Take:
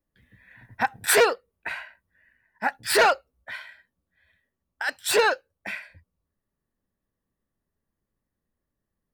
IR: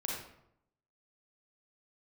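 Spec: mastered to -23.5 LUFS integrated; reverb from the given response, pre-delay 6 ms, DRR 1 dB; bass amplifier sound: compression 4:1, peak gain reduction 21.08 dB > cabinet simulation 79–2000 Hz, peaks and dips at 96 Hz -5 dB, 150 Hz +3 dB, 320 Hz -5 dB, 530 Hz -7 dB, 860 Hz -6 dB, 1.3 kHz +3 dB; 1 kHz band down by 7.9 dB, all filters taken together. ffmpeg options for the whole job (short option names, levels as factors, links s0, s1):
-filter_complex "[0:a]equalizer=f=1000:t=o:g=-9,asplit=2[s0][s1];[1:a]atrim=start_sample=2205,adelay=6[s2];[s1][s2]afir=irnorm=-1:irlink=0,volume=0.668[s3];[s0][s3]amix=inputs=2:normalize=0,acompressor=threshold=0.0112:ratio=4,highpass=f=79:w=0.5412,highpass=f=79:w=1.3066,equalizer=f=96:t=q:w=4:g=-5,equalizer=f=150:t=q:w=4:g=3,equalizer=f=320:t=q:w=4:g=-5,equalizer=f=530:t=q:w=4:g=-7,equalizer=f=860:t=q:w=4:g=-6,equalizer=f=1300:t=q:w=4:g=3,lowpass=f=2000:w=0.5412,lowpass=f=2000:w=1.3066,volume=11.2"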